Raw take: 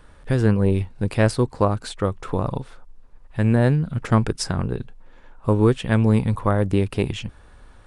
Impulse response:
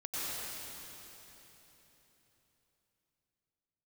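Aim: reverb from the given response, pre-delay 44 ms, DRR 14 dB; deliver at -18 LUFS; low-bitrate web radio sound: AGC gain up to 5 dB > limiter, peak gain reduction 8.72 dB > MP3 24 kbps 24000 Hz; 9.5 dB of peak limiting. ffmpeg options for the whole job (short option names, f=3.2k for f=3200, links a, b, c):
-filter_complex "[0:a]alimiter=limit=-13.5dB:level=0:latency=1,asplit=2[a][b];[1:a]atrim=start_sample=2205,adelay=44[c];[b][c]afir=irnorm=-1:irlink=0,volume=-19dB[d];[a][d]amix=inputs=2:normalize=0,dynaudnorm=m=5dB,alimiter=limit=-21.5dB:level=0:latency=1,volume=15dB" -ar 24000 -c:a libmp3lame -b:a 24k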